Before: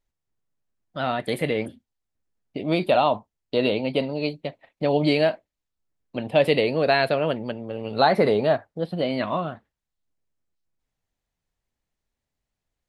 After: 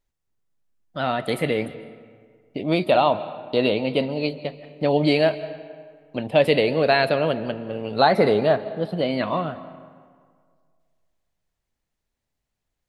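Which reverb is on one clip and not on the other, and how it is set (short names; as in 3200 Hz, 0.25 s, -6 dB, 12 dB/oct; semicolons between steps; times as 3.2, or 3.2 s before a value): digital reverb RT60 1.9 s, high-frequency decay 0.6×, pre-delay 0.11 s, DRR 15 dB; gain +1.5 dB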